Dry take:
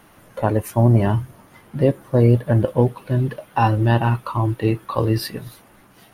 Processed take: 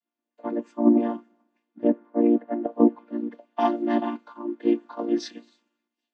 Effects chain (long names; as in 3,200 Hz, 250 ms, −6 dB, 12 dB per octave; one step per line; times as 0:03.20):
channel vocoder with a chord as carrier major triad, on A#3
0:01.83–0:02.72: bass and treble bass −6 dB, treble −14 dB
multiband upward and downward expander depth 100%
level −6 dB